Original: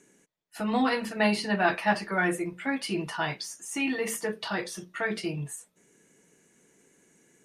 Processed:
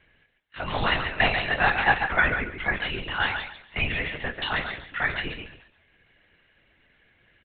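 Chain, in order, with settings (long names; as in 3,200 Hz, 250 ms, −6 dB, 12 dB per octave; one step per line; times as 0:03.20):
tilt shelving filter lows −9 dB, about 690 Hz
comb filter 3.5 ms, depth 33%
on a send: feedback echo with a high-pass in the loop 139 ms, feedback 23%, high-pass 160 Hz, level −7 dB
on the sum: linear-prediction vocoder at 8 kHz whisper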